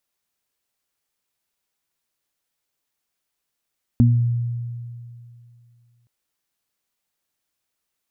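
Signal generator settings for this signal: additive tone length 2.07 s, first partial 119 Hz, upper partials 0 dB, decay 2.53 s, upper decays 0.37 s, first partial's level -11 dB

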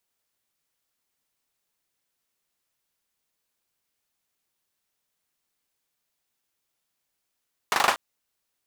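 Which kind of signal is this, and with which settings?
hand clap length 0.24 s, bursts 5, apart 40 ms, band 1000 Hz, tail 0.25 s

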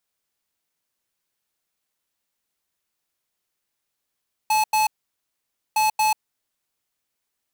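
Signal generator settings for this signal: beep pattern square 862 Hz, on 0.14 s, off 0.09 s, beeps 2, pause 0.89 s, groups 2, -19 dBFS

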